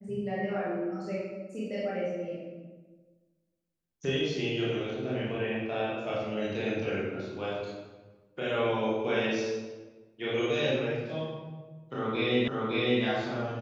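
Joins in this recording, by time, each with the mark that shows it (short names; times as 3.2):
12.48 repeat of the last 0.56 s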